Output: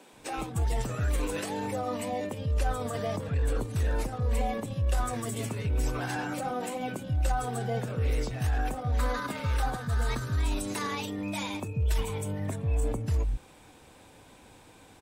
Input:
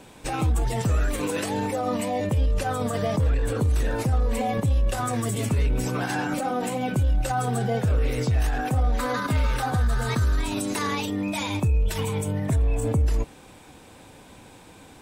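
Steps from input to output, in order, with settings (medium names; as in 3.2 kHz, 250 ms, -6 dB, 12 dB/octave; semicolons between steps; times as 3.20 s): bands offset in time highs, lows 130 ms, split 200 Hz; trim -5.5 dB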